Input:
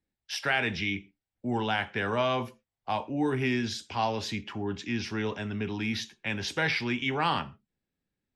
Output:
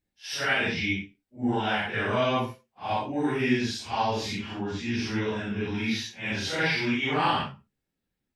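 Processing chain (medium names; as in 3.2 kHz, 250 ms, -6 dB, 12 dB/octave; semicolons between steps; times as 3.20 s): phase randomisation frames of 200 ms; trim +2.5 dB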